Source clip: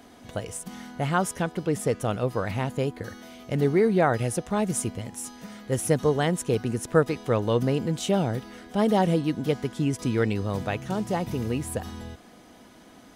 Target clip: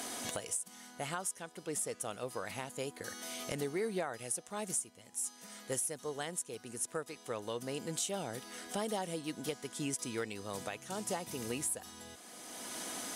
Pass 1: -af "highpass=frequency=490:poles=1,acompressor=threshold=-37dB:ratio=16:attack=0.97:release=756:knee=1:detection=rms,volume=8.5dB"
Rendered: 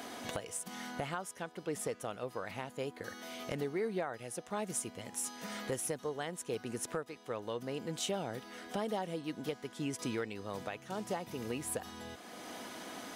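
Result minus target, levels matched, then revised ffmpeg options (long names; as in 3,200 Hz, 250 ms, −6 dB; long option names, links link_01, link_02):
8,000 Hz band −4.0 dB
-af "highpass=frequency=490:poles=1,equalizer=frequency=9100:width=0.67:gain=14.5,acompressor=threshold=-37dB:ratio=16:attack=0.97:release=756:knee=1:detection=rms,volume=8.5dB"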